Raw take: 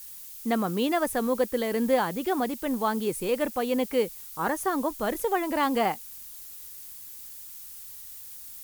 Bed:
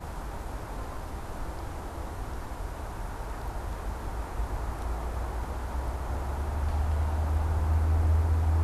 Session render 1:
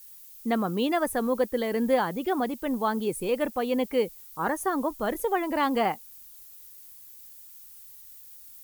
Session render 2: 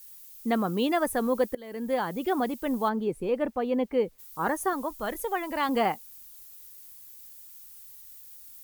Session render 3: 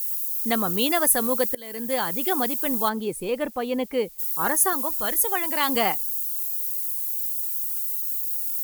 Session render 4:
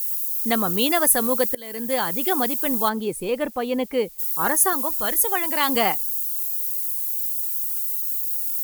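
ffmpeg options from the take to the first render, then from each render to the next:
ffmpeg -i in.wav -af "afftdn=noise_reduction=8:noise_floor=-44" out.wav
ffmpeg -i in.wav -filter_complex "[0:a]asplit=3[link_01][link_02][link_03];[link_01]afade=type=out:start_time=2.88:duration=0.02[link_04];[link_02]lowpass=frequency=1400:poles=1,afade=type=in:start_time=2.88:duration=0.02,afade=type=out:start_time=4.18:duration=0.02[link_05];[link_03]afade=type=in:start_time=4.18:duration=0.02[link_06];[link_04][link_05][link_06]amix=inputs=3:normalize=0,asettb=1/sr,asplit=3[link_07][link_08][link_09];[link_07]atrim=end=4.734[link_10];[link_08]atrim=start=4.73:end=5.69,asetpts=PTS-STARTPTS,afade=type=in:duration=0.004:curve=qsin,afade=type=out:start_time=0.956:duration=0.004:curve=qsin,equalizer=frequency=290:width=0.44:gain=-6[link_11];[link_09]atrim=start=5.686[link_12];[link_10][link_11]acrossfade=duration=0.004:curve1=hsin:curve2=qsin[link_13];[link_13][link_12]acrossfade=duration=0.004:curve1=qsin:curve2=hsin,asplit=2[link_14][link_15];[link_14]atrim=end=1.55,asetpts=PTS-STARTPTS,afade=type=out:start_time=1.546:duration=0.004:curve=hsin:silence=0.0749894[link_16];[link_15]atrim=start=1.55,asetpts=PTS-STARTPTS,afade=type=in:duration=0.7:silence=0.0749894[link_17];[link_16][link_17]concat=n=2:v=0:a=1" out.wav
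ffmpeg -i in.wav -af "crystalizer=i=5.5:c=0" out.wav
ffmpeg -i in.wav -af "volume=2dB" out.wav

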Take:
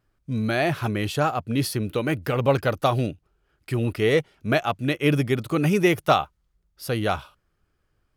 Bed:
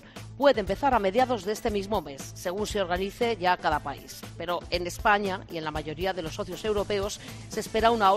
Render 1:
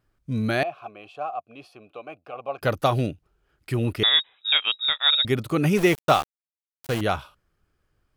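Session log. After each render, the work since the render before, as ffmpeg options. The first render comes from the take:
ffmpeg -i in.wav -filter_complex "[0:a]asettb=1/sr,asplit=3[link_01][link_02][link_03];[link_01]atrim=end=0.634[link_04];[link_02]atrim=start=0.63:end=2.62,asetpts=PTS-STARTPTS,afade=type=in:duration=0.004:curve=qsin,afade=type=out:start_time=1.986:duration=0.004:curve=qsin,asplit=3[link_05][link_06][link_07];[link_05]bandpass=frequency=730:width_type=q:width=8,volume=0dB[link_08];[link_06]bandpass=frequency=1090:width_type=q:width=8,volume=-6dB[link_09];[link_07]bandpass=frequency=2440:width_type=q:width=8,volume=-9dB[link_10];[link_08][link_09][link_10]amix=inputs=3:normalize=0[link_11];[link_03]atrim=start=2.616[link_12];[link_04][link_11]acrossfade=duration=0.004:curve1=hsin:curve2=qsin[link_13];[link_13][link_12]acrossfade=duration=0.004:curve1=qsin:curve2=hsin,asettb=1/sr,asplit=3[link_14][link_15][link_16];[link_14]atrim=end=4.034[link_17];[link_15]atrim=start=4.03:end=5.25,asetpts=PTS-STARTPTS,afade=type=in:duration=0.004:curve=qsin,afade=type=out:start_time=1.216:duration=0.004:curve=qsin,lowpass=frequency=3300:width_type=q:width=0.5098,lowpass=frequency=3300:width_type=q:width=0.6013,lowpass=frequency=3300:width_type=q:width=0.9,lowpass=frequency=3300:width_type=q:width=2.563,afreqshift=-3900[link_18];[link_16]atrim=start=5.246[link_19];[link_17][link_18]acrossfade=duration=0.004:curve1=hsin:curve2=qsin[link_20];[link_20][link_19]acrossfade=duration=0.004:curve1=qsin:curve2=hsin,asettb=1/sr,asplit=3[link_21][link_22][link_23];[link_21]atrim=end=5.774[link_24];[link_22]atrim=start=5.77:end=7.01,asetpts=PTS-STARTPTS,afade=type=in:duration=0.004:curve=qsin,afade=type=out:start_time=1.236:duration=0.004:curve=qsin,aeval=exprs='val(0)*gte(abs(val(0)),0.0447)':channel_layout=same[link_25];[link_23]atrim=start=7.006[link_26];[link_24][link_25]acrossfade=duration=0.004:curve1=hsin:curve2=qsin[link_27];[link_27][link_26]acrossfade=duration=0.004:curve1=qsin:curve2=hsin" out.wav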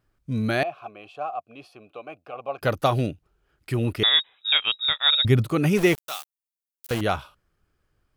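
ffmpeg -i in.wav -filter_complex "[0:a]asettb=1/sr,asplit=3[link_01][link_02][link_03];[link_01]atrim=end=4.594[link_04];[link_02]atrim=start=4.59:end=5.46,asetpts=PTS-STARTPTS,afade=type=in:duration=0.004:curve=qsin,afade=type=out:start_time=0.866:duration=0.004:curve=qsin,equalizer=frequency=90:width=0.76:gain=13[link_05];[link_03]atrim=start=5.456[link_06];[link_04][link_05]acrossfade=duration=0.004:curve1=hsin:curve2=qsin[link_07];[link_07][link_06]acrossfade=duration=0.004:curve1=qsin:curve2=hsin,asettb=1/sr,asplit=3[link_08][link_09][link_10];[link_08]atrim=end=5.984[link_11];[link_09]atrim=start=5.98:end=6.91,asetpts=PTS-STARTPTS,afade=type=in:duration=0.004:curve=qsin,afade=type=out:start_time=0.926:duration=0.004:curve=qsin,aderivative[link_12];[link_10]atrim=start=6.906[link_13];[link_11][link_12]acrossfade=duration=0.004:curve1=hsin:curve2=qsin[link_14];[link_14][link_13]acrossfade=duration=0.004:curve1=qsin:curve2=hsin" out.wav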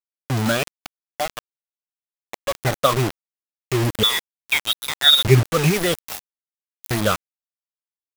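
ffmpeg -i in.wav -af "afftfilt=real='re*pow(10,17/40*sin(2*PI*(0.76*log(max(b,1)*sr/1024/100)/log(2)-(-2.6)*(pts-256)/sr)))':imag='im*pow(10,17/40*sin(2*PI*(0.76*log(max(b,1)*sr/1024/100)/log(2)-(-2.6)*(pts-256)/sr)))':win_size=1024:overlap=0.75,acrusher=bits=3:mix=0:aa=0.000001" out.wav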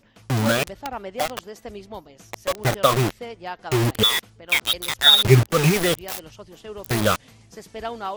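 ffmpeg -i in.wav -i bed.wav -filter_complex "[1:a]volume=-9dB[link_01];[0:a][link_01]amix=inputs=2:normalize=0" out.wav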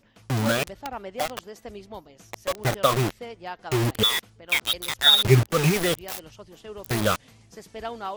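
ffmpeg -i in.wav -af "volume=-3dB" out.wav

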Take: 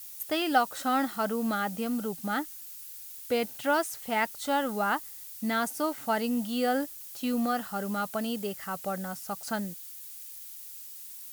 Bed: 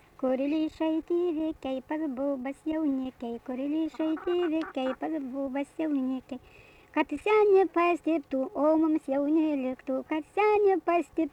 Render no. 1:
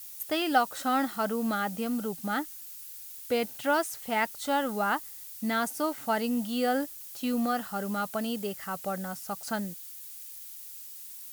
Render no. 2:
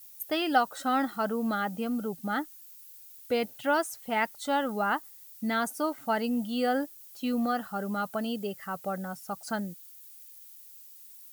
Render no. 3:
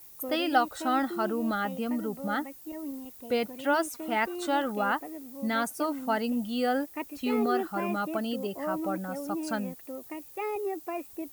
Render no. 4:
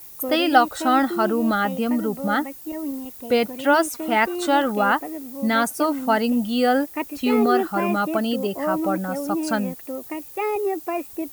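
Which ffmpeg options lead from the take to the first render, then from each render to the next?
ffmpeg -i in.wav -af anull out.wav
ffmpeg -i in.wav -af "afftdn=noise_reduction=9:noise_floor=-44" out.wav
ffmpeg -i in.wav -i bed.wav -filter_complex "[1:a]volume=-9.5dB[link_01];[0:a][link_01]amix=inputs=2:normalize=0" out.wav
ffmpeg -i in.wav -af "volume=8.5dB" out.wav

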